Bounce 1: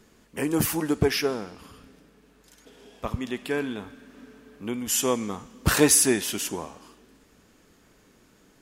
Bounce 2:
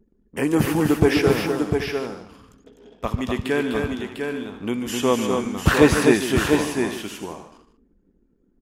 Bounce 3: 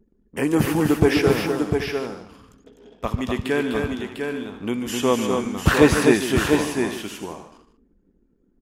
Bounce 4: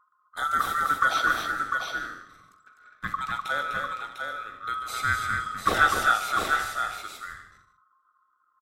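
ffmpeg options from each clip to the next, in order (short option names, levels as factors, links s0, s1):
-filter_complex "[0:a]acrossover=split=3400[s0][s1];[s1]acompressor=threshold=0.01:ratio=4:attack=1:release=60[s2];[s0][s2]amix=inputs=2:normalize=0,anlmdn=0.00631,aecho=1:1:145|251|700|778|852:0.266|0.562|0.531|0.178|0.119,volume=1.78"
-af anull
-filter_complex "[0:a]afftfilt=real='real(if(lt(b,960),b+48*(1-2*mod(floor(b/48),2)),b),0)':imag='imag(if(lt(b,960),b+48*(1-2*mod(floor(b/48),2)),b),0)':win_size=2048:overlap=0.75,asplit=2[s0][s1];[s1]adelay=44,volume=0.224[s2];[s0][s2]amix=inputs=2:normalize=0,volume=0.473"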